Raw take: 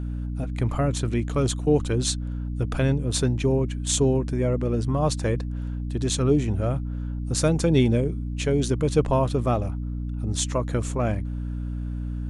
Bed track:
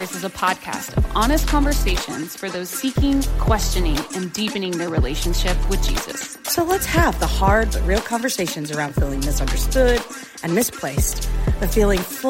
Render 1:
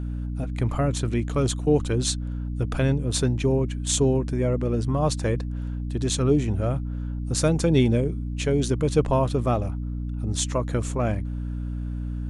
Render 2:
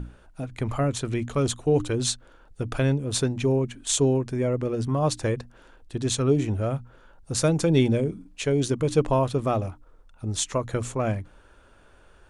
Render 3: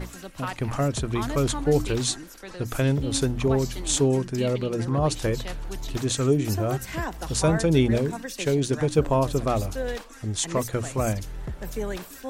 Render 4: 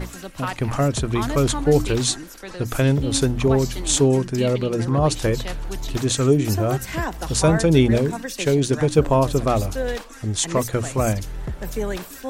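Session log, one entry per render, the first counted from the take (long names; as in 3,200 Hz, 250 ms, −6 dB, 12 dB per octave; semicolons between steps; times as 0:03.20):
no processing that can be heard
mains-hum notches 60/120/180/240/300 Hz
mix in bed track −14 dB
level +4.5 dB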